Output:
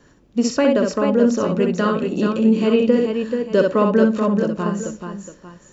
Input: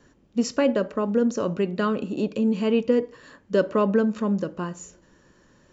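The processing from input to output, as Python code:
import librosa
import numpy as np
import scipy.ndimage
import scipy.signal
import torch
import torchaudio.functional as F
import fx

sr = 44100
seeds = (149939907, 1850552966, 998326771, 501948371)

y = fx.echo_multitap(x, sr, ms=(63, 433, 850), db=(-4.5, -6.0, -14.5))
y = y * 10.0 ** (4.0 / 20.0)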